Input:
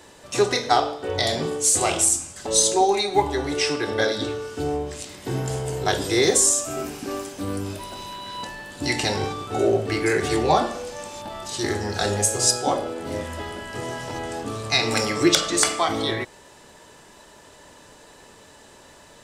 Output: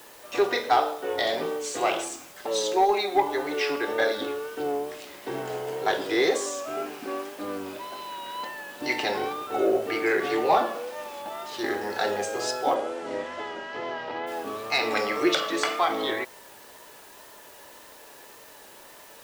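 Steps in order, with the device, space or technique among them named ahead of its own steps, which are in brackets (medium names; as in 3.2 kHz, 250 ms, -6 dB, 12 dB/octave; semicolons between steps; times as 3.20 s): tape answering machine (band-pass 370–3000 Hz; saturation -10.5 dBFS, distortion -21 dB; wow and flutter; white noise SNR 23 dB); 12.74–14.26 s: low-pass 10 kHz -> 4.3 kHz 24 dB/octave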